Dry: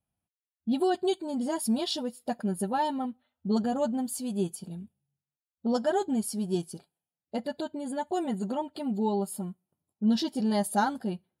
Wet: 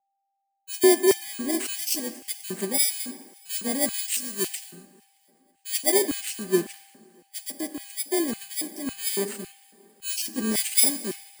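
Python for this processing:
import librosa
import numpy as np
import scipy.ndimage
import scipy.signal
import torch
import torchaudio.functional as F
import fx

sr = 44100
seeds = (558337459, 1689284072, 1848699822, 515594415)

y = fx.bit_reversed(x, sr, seeds[0], block=32)
y = fx.graphic_eq_10(y, sr, hz=(125, 1000, 8000), db=(6, -7, 11))
y = fx.echo_swing(y, sr, ms=829, ratio=3, feedback_pct=60, wet_db=-22.5)
y = fx.rev_plate(y, sr, seeds[1], rt60_s=3.1, hf_ratio=1.0, predelay_ms=0, drr_db=11.0)
y = fx.filter_lfo_highpass(y, sr, shape='square', hz=1.8, low_hz=320.0, high_hz=2500.0, q=1.9)
y = y + 10.0 ** (-55.0 / 20.0) * np.sin(2.0 * np.pi * 790.0 * np.arange(len(y)) / sr)
y = fx.tilt_shelf(y, sr, db=-4.0, hz=1500.0, at=(3.94, 4.71))
y = fx.band_widen(y, sr, depth_pct=70)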